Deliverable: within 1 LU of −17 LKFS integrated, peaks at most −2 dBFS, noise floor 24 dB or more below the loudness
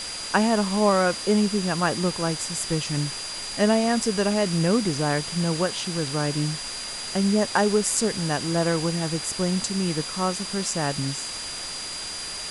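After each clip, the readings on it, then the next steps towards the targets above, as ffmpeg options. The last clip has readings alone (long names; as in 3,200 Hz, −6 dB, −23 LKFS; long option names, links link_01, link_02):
interfering tone 4,800 Hz; level of the tone −34 dBFS; background noise floor −34 dBFS; target noise floor −48 dBFS; integrated loudness −24.0 LKFS; sample peak −6.0 dBFS; target loudness −17.0 LKFS
→ -af "bandreject=frequency=4800:width=30"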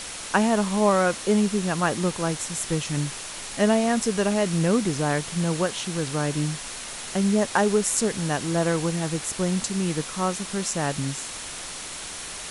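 interfering tone none found; background noise floor −36 dBFS; target noise floor −49 dBFS
→ -af "afftdn=noise_reduction=13:noise_floor=-36"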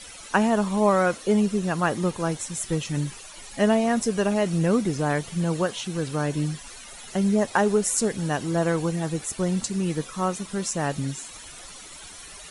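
background noise floor −43 dBFS; target noise floor −49 dBFS
→ -af "afftdn=noise_reduction=6:noise_floor=-43"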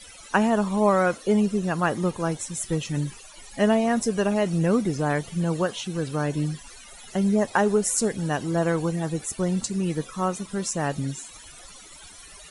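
background noise floor −46 dBFS; target noise floor −49 dBFS
→ -af "afftdn=noise_reduction=6:noise_floor=-46"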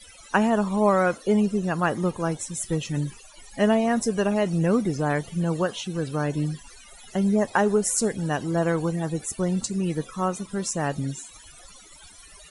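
background noise floor −49 dBFS; integrated loudness −25.0 LKFS; sample peak −7.5 dBFS; target loudness −17.0 LKFS
→ -af "volume=8dB,alimiter=limit=-2dB:level=0:latency=1"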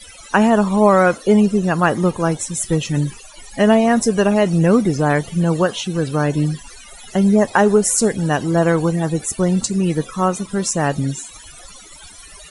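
integrated loudness −17.0 LKFS; sample peak −2.0 dBFS; background noise floor −41 dBFS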